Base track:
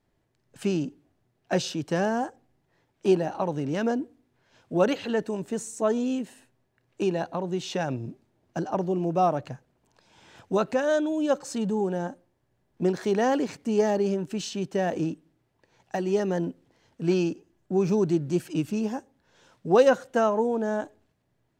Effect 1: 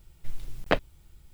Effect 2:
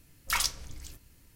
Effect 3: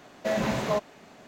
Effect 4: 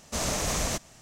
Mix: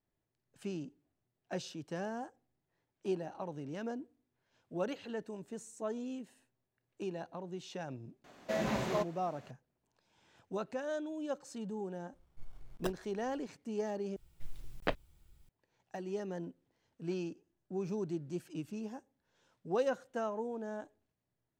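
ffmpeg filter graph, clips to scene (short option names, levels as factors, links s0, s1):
-filter_complex "[1:a]asplit=2[s0][s1];[0:a]volume=0.2[s2];[s0]acrusher=samples=20:mix=1:aa=0.000001[s3];[s2]asplit=2[s4][s5];[s4]atrim=end=14.164[s6];[s1]atrim=end=1.33,asetpts=PTS-STARTPTS,volume=0.335[s7];[s5]atrim=start=15.486[s8];[3:a]atrim=end=1.27,asetpts=PTS-STARTPTS,volume=0.447,afade=t=in:d=0.004:c=hsin,afade=t=out:st=1.266:d=0.004:c=hsin,adelay=8240[s9];[s3]atrim=end=1.33,asetpts=PTS-STARTPTS,volume=0.188,afade=t=in:d=0.004:c=hsin,afade=t=out:st=1.326:d=0.004:c=hsin,adelay=12130[s10];[s6][s7]acrossfade=d=0.004:c1=hsin:c2=hsin[s11];[s11][s8]acrossfade=d=0.004:c1=hsin:c2=hsin[s12];[s12][s9][s10]amix=inputs=3:normalize=0"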